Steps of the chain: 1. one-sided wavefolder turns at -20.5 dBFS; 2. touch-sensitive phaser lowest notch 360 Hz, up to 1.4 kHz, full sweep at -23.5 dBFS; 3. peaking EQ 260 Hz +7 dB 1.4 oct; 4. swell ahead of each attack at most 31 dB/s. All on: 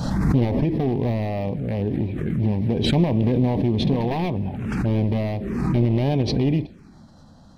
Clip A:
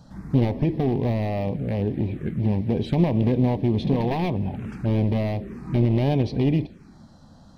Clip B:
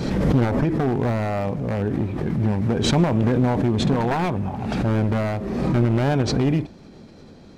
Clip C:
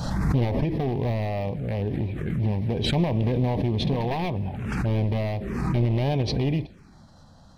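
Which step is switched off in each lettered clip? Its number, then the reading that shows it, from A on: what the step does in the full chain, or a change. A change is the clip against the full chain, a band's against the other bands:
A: 4, 4 kHz band -6.0 dB; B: 2, 2 kHz band +4.5 dB; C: 3, 250 Hz band -4.5 dB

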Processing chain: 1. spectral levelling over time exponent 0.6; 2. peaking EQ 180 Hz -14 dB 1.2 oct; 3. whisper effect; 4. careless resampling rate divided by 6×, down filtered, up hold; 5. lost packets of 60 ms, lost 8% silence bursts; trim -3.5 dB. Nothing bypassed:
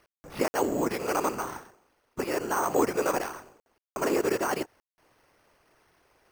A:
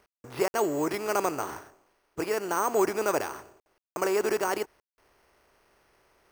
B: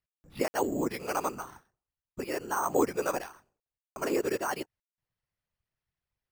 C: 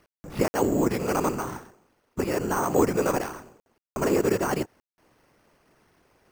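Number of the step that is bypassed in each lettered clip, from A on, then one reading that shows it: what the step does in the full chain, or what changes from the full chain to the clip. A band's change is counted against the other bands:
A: 3, 125 Hz band -2.5 dB; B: 1, crest factor change +1.5 dB; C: 2, 125 Hz band +9.5 dB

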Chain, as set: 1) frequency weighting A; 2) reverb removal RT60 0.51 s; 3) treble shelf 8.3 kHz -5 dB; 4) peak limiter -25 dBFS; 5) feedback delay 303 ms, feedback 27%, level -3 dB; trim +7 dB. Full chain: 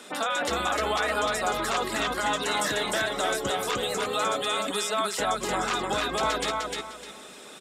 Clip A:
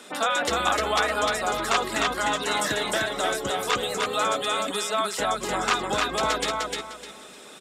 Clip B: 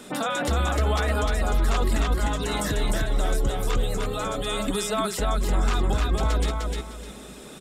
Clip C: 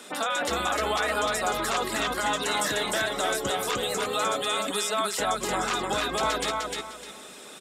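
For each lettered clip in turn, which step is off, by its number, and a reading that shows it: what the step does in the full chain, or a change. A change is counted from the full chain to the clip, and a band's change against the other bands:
4, crest factor change +4.5 dB; 1, 125 Hz band +19.0 dB; 3, 8 kHz band +2.0 dB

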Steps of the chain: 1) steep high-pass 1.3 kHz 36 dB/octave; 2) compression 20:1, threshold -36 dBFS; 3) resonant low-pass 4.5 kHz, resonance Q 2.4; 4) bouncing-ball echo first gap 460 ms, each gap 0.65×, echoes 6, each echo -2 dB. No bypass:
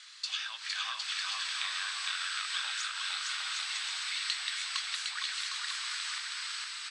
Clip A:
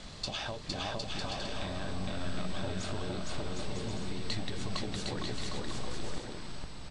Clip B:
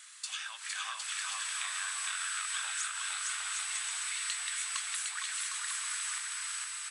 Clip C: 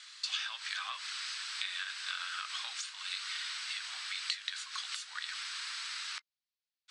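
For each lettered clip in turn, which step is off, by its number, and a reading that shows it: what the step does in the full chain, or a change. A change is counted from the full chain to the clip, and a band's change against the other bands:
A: 1, 1 kHz band +7.5 dB; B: 3, 8 kHz band +9.0 dB; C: 4, crest factor change +3.5 dB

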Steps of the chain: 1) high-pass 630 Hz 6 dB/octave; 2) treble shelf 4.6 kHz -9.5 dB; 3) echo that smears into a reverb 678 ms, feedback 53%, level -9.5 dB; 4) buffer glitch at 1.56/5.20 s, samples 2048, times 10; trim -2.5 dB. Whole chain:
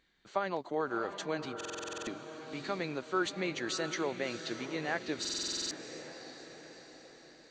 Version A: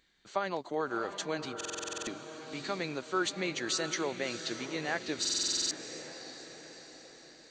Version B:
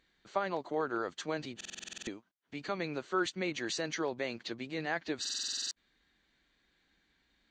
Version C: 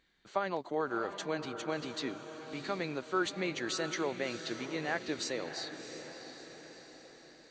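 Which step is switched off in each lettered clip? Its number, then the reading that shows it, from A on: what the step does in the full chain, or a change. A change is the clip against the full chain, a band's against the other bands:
2, 8 kHz band +6.0 dB; 3, momentary loudness spread change -6 LU; 4, 8 kHz band -4.0 dB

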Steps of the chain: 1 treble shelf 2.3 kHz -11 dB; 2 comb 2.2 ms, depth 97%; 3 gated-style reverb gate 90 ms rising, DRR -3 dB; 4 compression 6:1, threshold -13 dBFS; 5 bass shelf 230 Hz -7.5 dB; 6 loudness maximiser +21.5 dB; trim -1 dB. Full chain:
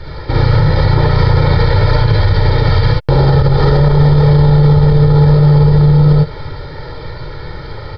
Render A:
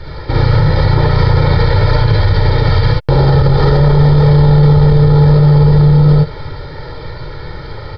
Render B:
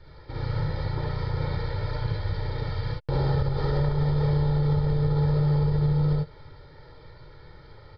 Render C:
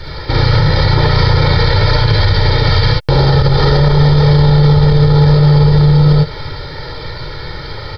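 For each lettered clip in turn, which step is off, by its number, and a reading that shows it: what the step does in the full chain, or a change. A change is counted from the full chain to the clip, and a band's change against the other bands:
4, mean gain reduction 2.0 dB; 6, crest factor change +5.5 dB; 1, 4 kHz band +7.5 dB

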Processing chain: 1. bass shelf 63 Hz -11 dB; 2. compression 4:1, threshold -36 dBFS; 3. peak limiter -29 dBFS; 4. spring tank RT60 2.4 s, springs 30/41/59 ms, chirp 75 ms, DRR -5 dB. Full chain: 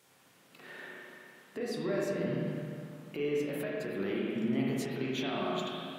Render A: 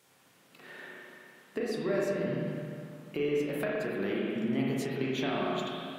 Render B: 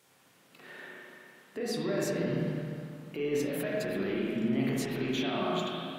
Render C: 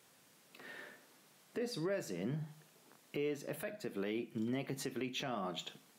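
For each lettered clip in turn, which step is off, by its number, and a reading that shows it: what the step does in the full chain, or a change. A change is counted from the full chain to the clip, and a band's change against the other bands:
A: 3, momentary loudness spread change +1 LU; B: 2, mean gain reduction 10.5 dB; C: 4, momentary loudness spread change -2 LU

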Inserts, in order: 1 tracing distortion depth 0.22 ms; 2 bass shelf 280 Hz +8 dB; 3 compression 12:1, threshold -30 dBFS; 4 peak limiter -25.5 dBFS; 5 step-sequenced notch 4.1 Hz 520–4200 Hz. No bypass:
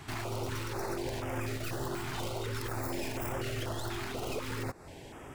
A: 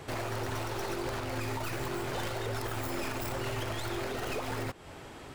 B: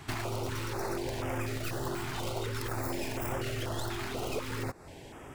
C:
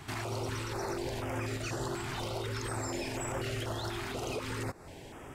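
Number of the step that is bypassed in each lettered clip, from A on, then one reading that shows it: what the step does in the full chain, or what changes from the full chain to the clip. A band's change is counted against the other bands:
5, 1 kHz band +1.5 dB; 4, loudness change +1.0 LU; 1, 8 kHz band +1.5 dB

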